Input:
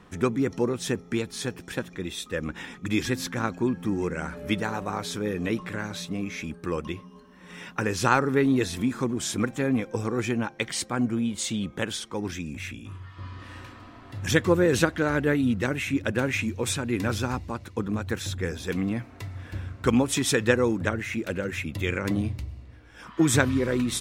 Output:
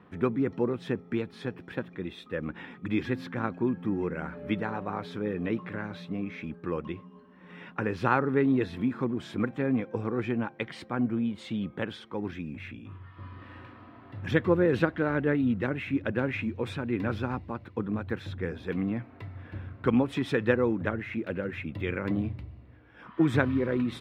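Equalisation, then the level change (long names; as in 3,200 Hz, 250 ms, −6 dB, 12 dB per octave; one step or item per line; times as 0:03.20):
high-pass filter 98 Hz
high-frequency loss of the air 420 metres
high-shelf EQ 10,000 Hz +10.5 dB
−1.5 dB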